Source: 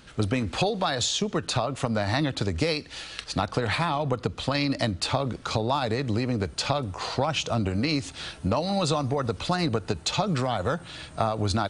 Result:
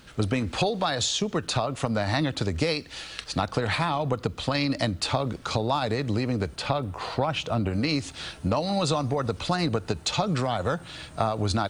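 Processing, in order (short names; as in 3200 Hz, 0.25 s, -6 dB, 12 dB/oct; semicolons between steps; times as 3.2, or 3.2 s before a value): 6.56–7.73 bell 6300 Hz -9.5 dB 1.1 oct; requantised 12-bit, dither triangular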